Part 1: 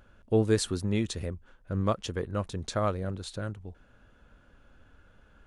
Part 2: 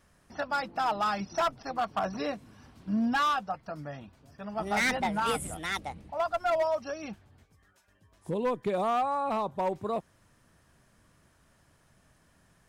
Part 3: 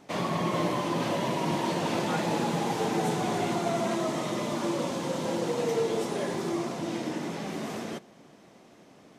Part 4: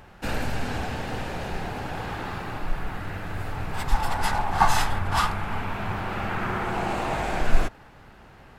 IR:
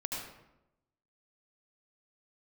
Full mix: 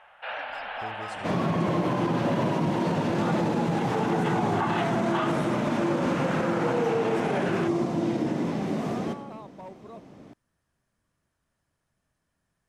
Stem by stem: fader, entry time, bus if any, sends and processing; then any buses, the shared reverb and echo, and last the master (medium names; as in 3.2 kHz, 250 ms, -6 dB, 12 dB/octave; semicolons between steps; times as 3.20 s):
-9.0 dB, 0.50 s, send -6 dB, compression 2:1, threshold -46 dBFS, peak gain reduction 14.5 dB
-14.0 dB, 0.00 s, no send, none
-0.5 dB, 1.15 s, send -8.5 dB, tilt EQ -2.5 dB/octave
-0.5 dB, 0.00 s, no send, elliptic band-pass 600–3200 Hz, stop band 40 dB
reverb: on, RT60 0.90 s, pre-delay 69 ms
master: peak limiter -17 dBFS, peak gain reduction 10 dB